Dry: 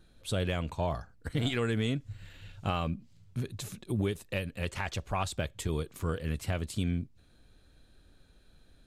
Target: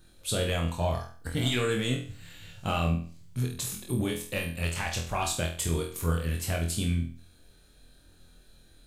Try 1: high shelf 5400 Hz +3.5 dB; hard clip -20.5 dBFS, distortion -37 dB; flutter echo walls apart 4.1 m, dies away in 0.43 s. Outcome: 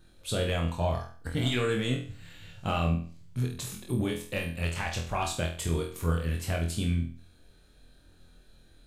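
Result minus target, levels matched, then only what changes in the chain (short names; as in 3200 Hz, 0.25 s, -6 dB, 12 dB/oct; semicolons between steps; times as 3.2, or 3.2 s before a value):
8000 Hz band -5.0 dB
change: high shelf 5400 Hz +11.5 dB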